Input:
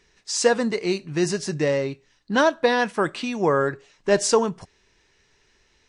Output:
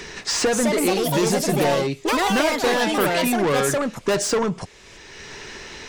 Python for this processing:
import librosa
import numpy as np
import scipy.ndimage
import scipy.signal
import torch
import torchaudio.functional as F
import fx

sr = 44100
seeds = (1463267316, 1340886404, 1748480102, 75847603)

y = 10.0 ** (-23.5 / 20.0) * np.tanh(x / 10.0 ** (-23.5 / 20.0))
y = fx.echo_pitch(y, sr, ms=300, semitones=4, count=3, db_per_echo=-3.0)
y = fx.band_squash(y, sr, depth_pct=70)
y = y * 10.0 ** (6.0 / 20.0)